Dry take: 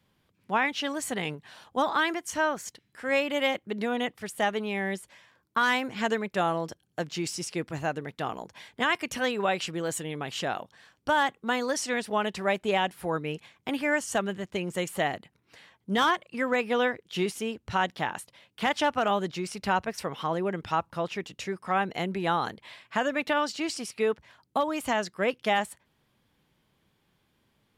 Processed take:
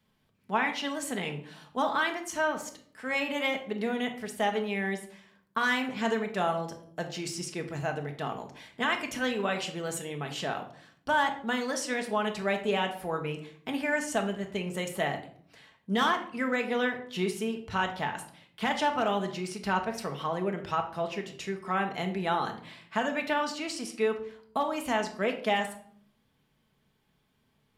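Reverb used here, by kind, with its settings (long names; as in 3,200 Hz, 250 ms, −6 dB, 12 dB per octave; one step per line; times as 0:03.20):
rectangular room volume 860 cubic metres, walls furnished, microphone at 1.5 metres
level −3.5 dB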